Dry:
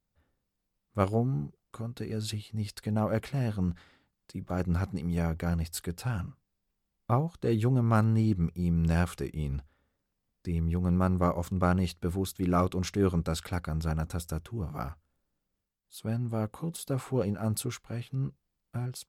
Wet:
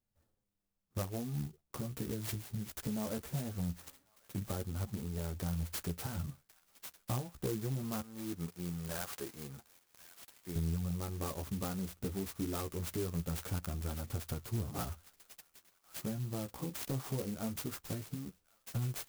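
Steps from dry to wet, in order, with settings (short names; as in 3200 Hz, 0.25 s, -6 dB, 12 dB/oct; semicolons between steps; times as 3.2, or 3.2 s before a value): gate -52 dBFS, range -7 dB; 8.01–10.56 HPF 1200 Hz 6 dB/oct; compressor 12:1, threshold -36 dBFS, peak gain reduction 17 dB; flange 0.21 Hz, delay 8.3 ms, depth 7.6 ms, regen +4%; hard clip -35.5 dBFS, distortion -20 dB; thin delay 1.098 s, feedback 38%, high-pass 3000 Hz, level -7 dB; clock jitter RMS 0.12 ms; gain +6 dB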